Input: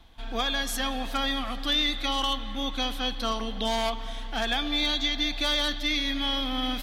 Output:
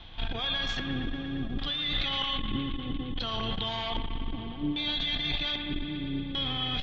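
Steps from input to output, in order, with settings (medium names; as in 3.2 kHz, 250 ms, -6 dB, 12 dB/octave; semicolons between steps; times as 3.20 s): octave divider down 1 oct, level 0 dB; compressor with a negative ratio -33 dBFS, ratio -1; LFO low-pass square 0.63 Hz 320–3300 Hz; feedback echo behind a band-pass 116 ms, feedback 81%, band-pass 1.5 kHz, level -6.5 dB; on a send at -14.5 dB: reverberation RT60 0.70 s, pre-delay 5 ms; on the sum: resampled via 16 kHz; transformer saturation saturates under 81 Hz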